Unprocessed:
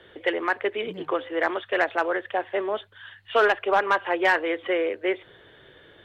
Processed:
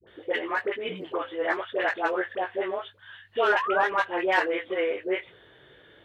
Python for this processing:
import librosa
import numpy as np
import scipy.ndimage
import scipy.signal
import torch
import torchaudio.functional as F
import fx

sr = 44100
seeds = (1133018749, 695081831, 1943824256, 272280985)

y = scipy.signal.sosfilt(scipy.signal.butter(2, 47.0, 'highpass', fs=sr, output='sos'), x)
y = fx.dispersion(y, sr, late='highs', ms=74.0, hz=690.0)
y = fx.spec_paint(y, sr, seeds[0], shape='rise', start_s=3.52, length_s=0.35, low_hz=830.0, high_hz=2000.0, level_db=-27.0)
y = fx.chorus_voices(y, sr, voices=6, hz=0.95, base_ms=19, depth_ms=3.6, mix_pct=35)